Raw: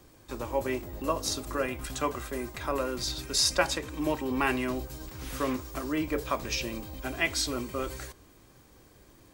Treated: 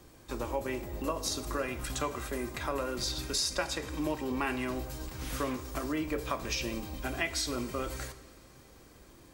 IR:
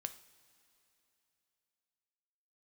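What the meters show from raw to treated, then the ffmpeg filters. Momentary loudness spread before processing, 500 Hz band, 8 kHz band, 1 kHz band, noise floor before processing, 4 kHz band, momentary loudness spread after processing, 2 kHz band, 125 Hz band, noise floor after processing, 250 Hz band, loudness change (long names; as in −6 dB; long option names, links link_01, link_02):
10 LU, −3.5 dB, −3.5 dB, −3.5 dB, −58 dBFS, −3.5 dB, 7 LU, −4.0 dB, −1.0 dB, −56 dBFS, −2.5 dB, −3.5 dB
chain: -filter_complex "[0:a]acompressor=threshold=-31dB:ratio=3,asplit=2[link_01][link_02];[1:a]atrim=start_sample=2205,asetrate=28224,aresample=44100[link_03];[link_02][link_03]afir=irnorm=-1:irlink=0,volume=5.5dB[link_04];[link_01][link_04]amix=inputs=2:normalize=0,volume=-8dB"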